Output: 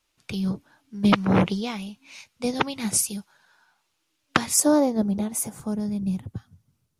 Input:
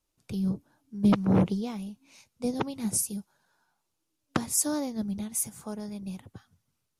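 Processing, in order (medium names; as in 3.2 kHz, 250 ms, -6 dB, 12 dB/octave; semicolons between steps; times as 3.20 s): peaking EQ 2.4 kHz +12.5 dB 2.9 oct, from 4.60 s 560 Hz, from 5.60 s 110 Hz; trim +1.5 dB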